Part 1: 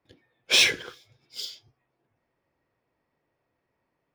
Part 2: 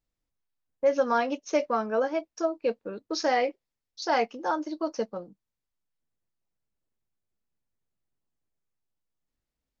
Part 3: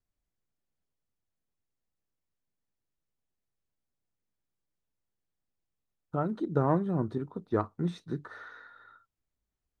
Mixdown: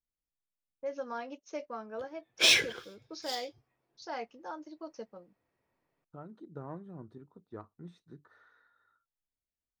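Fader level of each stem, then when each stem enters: −3.5, −14.0, −17.0 decibels; 1.90, 0.00, 0.00 seconds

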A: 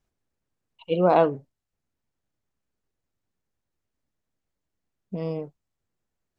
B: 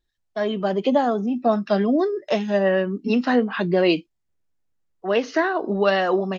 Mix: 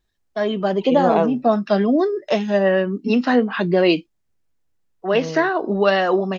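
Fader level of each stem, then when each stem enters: 0.0, +2.5 decibels; 0.00, 0.00 seconds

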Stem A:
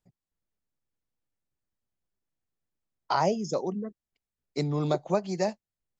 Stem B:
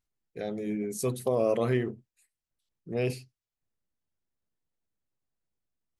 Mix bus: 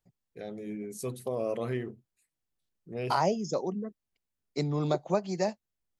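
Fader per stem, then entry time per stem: −1.5, −6.0 decibels; 0.00, 0.00 seconds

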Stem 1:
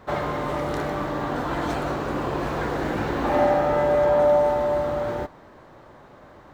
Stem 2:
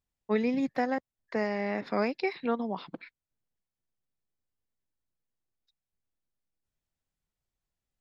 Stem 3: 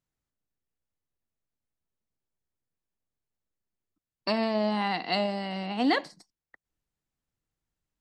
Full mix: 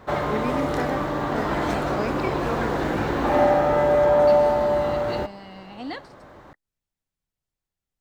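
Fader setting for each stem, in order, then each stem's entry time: +1.5, −1.0, −9.0 decibels; 0.00, 0.00, 0.00 seconds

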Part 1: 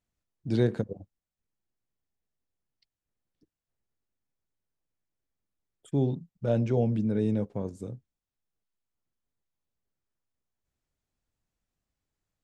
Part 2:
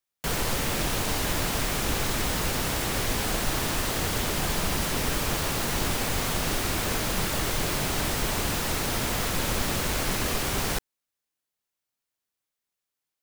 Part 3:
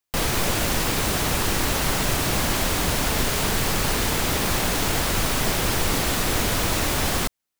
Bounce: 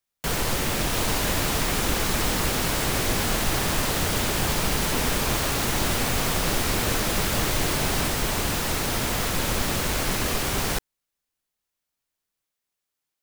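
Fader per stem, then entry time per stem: −14.5, +2.0, −8.0 decibels; 0.00, 0.00, 0.80 seconds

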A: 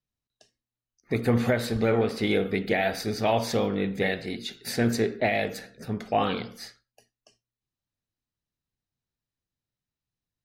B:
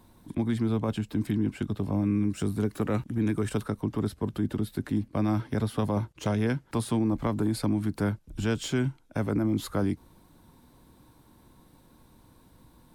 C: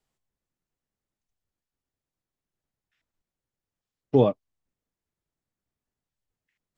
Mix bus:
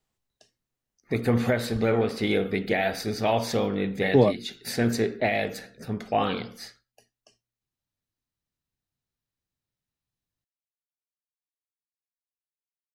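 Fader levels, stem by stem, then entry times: 0.0 dB, muted, +0.5 dB; 0.00 s, muted, 0.00 s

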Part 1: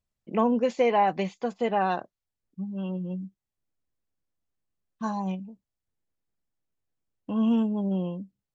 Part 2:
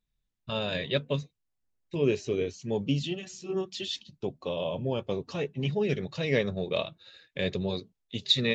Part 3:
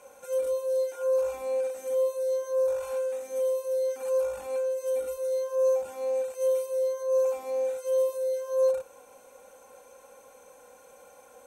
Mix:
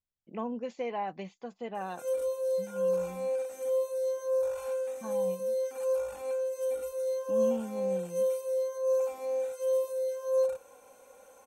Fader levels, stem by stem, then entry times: −12.0 dB, muted, −3.0 dB; 0.00 s, muted, 1.75 s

